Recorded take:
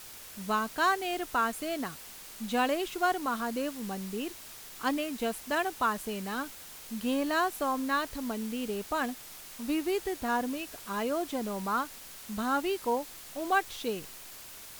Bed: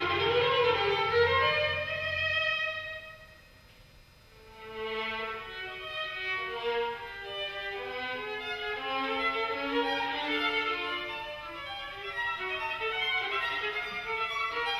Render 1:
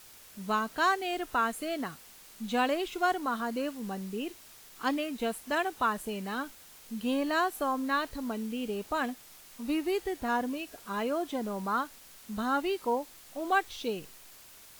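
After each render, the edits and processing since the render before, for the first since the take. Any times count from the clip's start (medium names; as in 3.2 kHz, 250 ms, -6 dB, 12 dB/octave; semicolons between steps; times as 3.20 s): noise print and reduce 6 dB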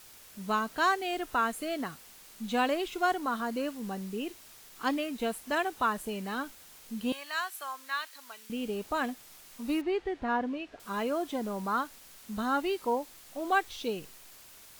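7.12–8.50 s: high-pass 1.4 kHz; 9.81–10.80 s: low-pass 3 kHz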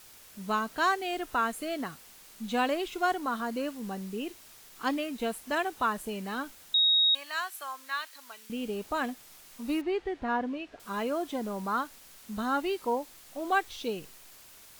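6.74–7.15 s: bleep 3.77 kHz -20 dBFS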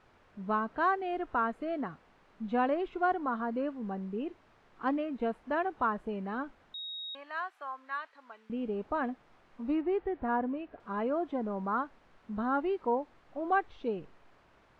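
low-pass 1.4 kHz 12 dB/octave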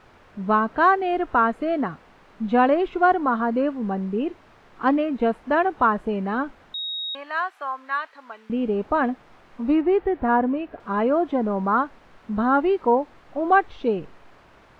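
trim +11 dB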